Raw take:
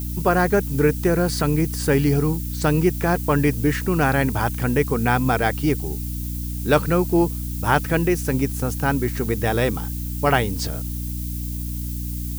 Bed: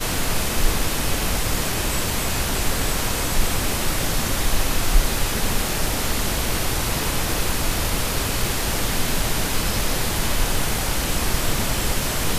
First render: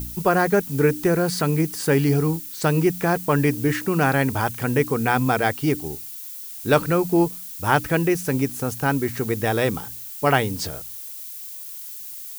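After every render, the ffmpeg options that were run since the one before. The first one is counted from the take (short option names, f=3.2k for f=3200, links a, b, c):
-af "bandreject=f=60:t=h:w=4,bandreject=f=120:t=h:w=4,bandreject=f=180:t=h:w=4,bandreject=f=240:t=h:w=4,bandreject=f=300:t=h:w=4"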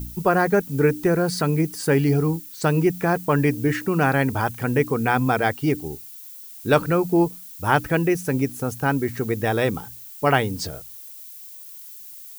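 -af "afftdn=nr=6:nf=-36"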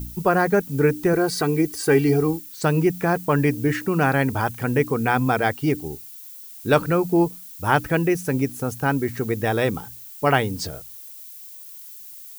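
-filter_complex "[0:a]asettb=1/sr,asplit=3[a][b][c];[a]atrim=end=1.134[d];[b]atrim=start=1.13:end=2.4,asetpts=PTS-STARTPTS,afade=t=in:d=0.004:c=qsin,afade=t=out:st=1.266:d=0.004:c=qsin,aecho=1:1:2.6:0.65,atrim=end_sample=56007[e];[c]atrim=start=2.396[f];[d][e]acrossfade=d=0.004:c1=hsin:c2=qsin[g];[g][f]acrossfade=d=0.004:c1=qsin:c2=hsin"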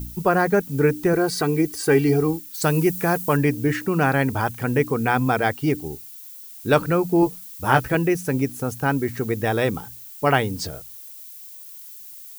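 -filter_complex "[0:a]asettb=1/sr,asplit=3[a][b][c];[a]atrim=end=2.544[d];[b]atrim=start=2.54:end=3.37,asetpts=PTS-STARTPTS,afade=t=in:d=0.004:c=qsin,afade=t=out:st=0.826:d=0.004:c=qsin,aemphasis=mode=production:type=cd[e];[c]atrim=start=3.366[f];[d][e]acrossfade=d=0.004:c1=hsin:c2=qsin[g];[g][f]acrossfade=d=0.004:c1=qsin:c2=hsin,asettb=1/sr,asplit=3[h][i][j];[h]atrim=end=7.214[k];[i]atrim=start=7.21:end=7.95,asetpts=PTS-STARTPTS,afade=t=in:d=0.004:c=qsin,afade=t=out:st=0.736:d=0.004:c=qsin,asplit=2[l][m];[m]adelay=15,volume=-5dB[n];[l][n]amix=inputs=2:normalize=0,atrim=end_sample=32634[o];[j]atrim=start=7.946[p];[k][o]acrossfade=d=0.004:c1=hsin:c2=qsin[q];[q][p]acrossfade=d=0.004:c1=qsin:c2=hsin"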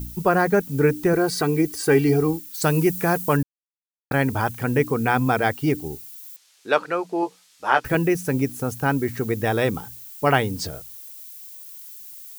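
-filter_complex "[0:a]asettb=1/sr,asplit=3[a][b][c];[a]atrim=end=6.364[d];[b]atrim=start=6.36:end=7.85,asetpts=PTS-STARTPTS,afade=t=in:d=0.004:c=qsin,afade=t=out:st=1.486:d=0.004:c=qsin,highpass=500,lowpass=5.1k[e];[c]atrim=start=7.846[f];[d][e]acrossfade=d=0.004:c1=hsin:c2=qsin[g];[g][f]acrossfade=d=0.004:c1=qsin:c2=hsin,asplit=3[h][i][j];[h]atrim=end=3.43,asetpts=PTS-STARTPTS,afade=t=out:st=3.426:d=0.004:c=hsin[k];[i]atrim=start=3.43:end=4.11,asetpts=PTS-STARTPTS,volume=0[l];[j]atrim=start=4.11,asetpts=PTS-STARTPTS,afade=t=in:d=0.004:c=hsin[m];[k][l][m]concat=n=3:v=0:a=1"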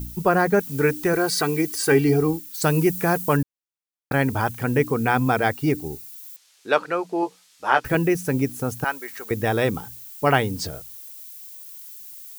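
-filter_complex "[0:a]asettb=1/sr,asplit=3[a][b][c];[a]atrim=end=0.594[d];[b]atrim=start=0.59:end=1.92,asetpts=PTS-STARTPTS,afade=t=in:d=0.004:c=qsin,afade=t=out:st=1.326:d=0.004:c=qsin,tiltshelf=f=700:g=-4[e];[c]atrim=start=1.916[f];[d][e]acrossfade=d=0.004:c1=hsin:c2=qsin[g];[g][f]acrossfade=d=0.004:c1=qsin:c2=hsin,asettb=1/sr,asplit=3[h][i][j];[h]atrim=end=5.484[k];[i]atrim=start=5.48:end=6.12,asetpts=PTS-STARTPTS,afade=t=in:d=0.004:c=qsin,afade=t=out:st=0.636:d=0.004:c=qsin,bandreject=f=3.1k:w=12[l];[j]atrim=start=6.116[m];[k][l]acrossfade=d=0.004:c1=hsin:c2=qsin[n];[n][m]acrossfade=d=0.004:c1=qsin:c2=hsin,asettb=1/sr,asplit=3[o][p][q];[o]atrim=end=8.844[r];[p]atrim=start=8.84:end=9.31,asetpts=PTS-STARTPTS,afade=t=in:d=0.004:c=qsin,afade=t=out:st=0.466:d=0.004:c=qsin,highpass=810[s];[q]atrim=start=9.306[t];[r][s]acrossfade=d=0.004:c1=hsin:c2=qsin[u];[u][t]acrossfade=d=0.004:c1=qsin:c2=hsin"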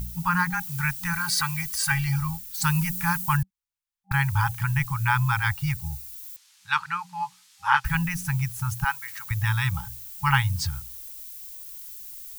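-af "afftfilt=real='re*(1-between(b*sr/4096,190,800))':imag='im*(1-between(b*sr/4096,190,800))':win_size=4096:overlap=0.75,asubboost=boost=6:cutoff=80"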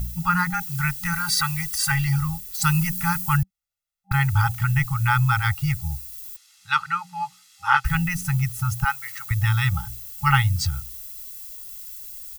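-af "aecho=1:1:1.5:0.89"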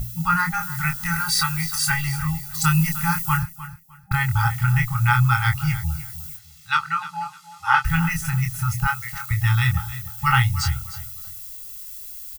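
-filter_complex "[0:a]asplit=2[a][b];[b]adelay=25,volume=-5dB[c];[a][c]amix=inputs=2:normalize=0,aecho=1:1:304|608|912:0.178|0.0427|0.0102"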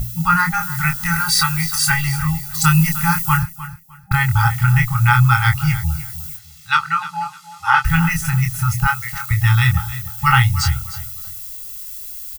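-af "volume=5dB,alimiter=limit=-2dB:level=0:latency=1"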